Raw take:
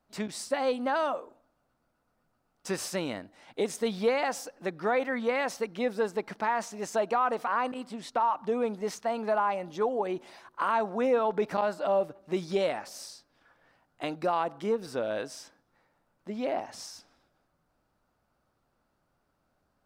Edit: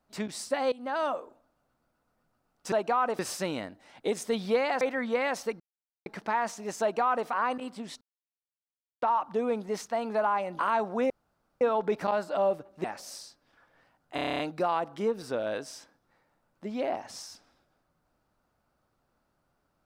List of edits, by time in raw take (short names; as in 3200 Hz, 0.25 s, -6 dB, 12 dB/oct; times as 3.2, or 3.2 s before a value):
0.72–1.06 fade in, from -17.5 dB
4.34–4.95 cut
5.74–6.2 mute
6.95–7.42 copy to 2.72
8.15 insert silence 1.01 s
9.72–10.6 cut
11.11 insert room tone 0.51 s
12.34–12.72 cut
14.03 stutter 0.03 s, 9 plays